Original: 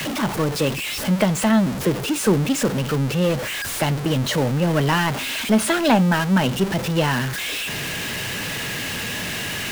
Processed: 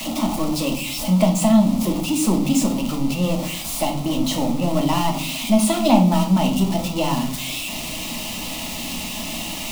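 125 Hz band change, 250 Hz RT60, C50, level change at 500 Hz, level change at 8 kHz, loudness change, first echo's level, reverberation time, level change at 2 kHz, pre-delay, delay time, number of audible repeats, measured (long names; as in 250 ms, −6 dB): −2.0 dB, 0.85 s, 10.5 dB, −1.5 dB, +1.5 dB, +0.5 dB, no echo audible, 0.55 s, −7.5 dB, 3 ms, no echo audible, no echo audible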